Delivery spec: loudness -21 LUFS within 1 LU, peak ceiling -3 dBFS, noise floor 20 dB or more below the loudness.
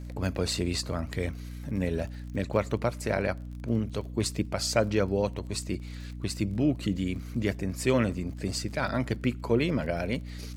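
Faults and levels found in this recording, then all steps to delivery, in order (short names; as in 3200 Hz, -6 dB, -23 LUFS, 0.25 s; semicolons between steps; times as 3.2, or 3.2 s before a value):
ticks 32/s; hum 60 Hz; harmonics up to 300 Hz; hum level -36 dBFS; loudness -30.0 LUFS; peak -8.5 dBFS; loudness target -21.0 LUFS
-> de-click; de-hum 60 Hz, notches 5; gain +9 dB; limiter -3 dBFS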